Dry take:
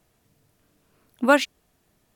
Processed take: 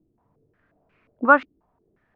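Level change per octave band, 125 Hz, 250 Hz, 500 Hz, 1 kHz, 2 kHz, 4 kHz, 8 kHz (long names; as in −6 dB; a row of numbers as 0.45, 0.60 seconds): can't be measured, −2.5 dB, −1.0 dB, +5.0 dB, +4.5 dB, below −15 dB, below −30 dB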